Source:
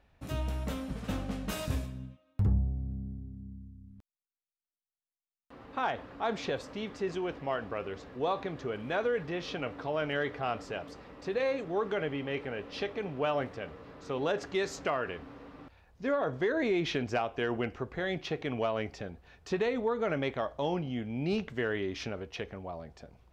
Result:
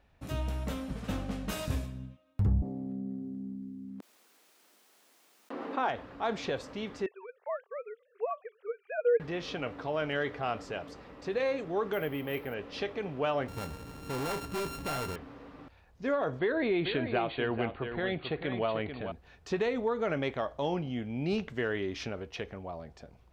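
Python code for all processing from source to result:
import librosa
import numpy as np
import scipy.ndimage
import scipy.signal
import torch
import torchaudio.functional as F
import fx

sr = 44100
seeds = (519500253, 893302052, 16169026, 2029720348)

y = fx.chain(x, sr, fx.highpass(hz=250.0, slope=24),
    fx.tilt_eq(slope=-2.0),
    fx.env_flatten(amount_pct=50), at=(2.62, 5.89))
y = fx.chain(y, sr, fx.sine_speech(),
    fx.transient(attack_db=0, sustain_db=-10),
    fx.brickwall_highpass(low_hz=400.0), at=(7.06, 9.2))
y = fx.chain(y, sr, fx.high_shelf(hz=11000.0, db=-6.0),
    fx.resample_bad(factor=3, down='filtered', up='hold'), at=(11.93, 12.54))
y = fx.chain(y, sr, fx.sample_sort(block=32),
    fx.low_shelf(hz=240.0, db=10.5),
    fx.clip_hard(threshold_db=-31.0), at=(13.48, 15.16))
y = fx.chain(y, sr, fx.brickwall_lowpass(high_hz=4600.0),
    fx.echo_single(ms=440, db=-8.0), at=(16.39, 19.12))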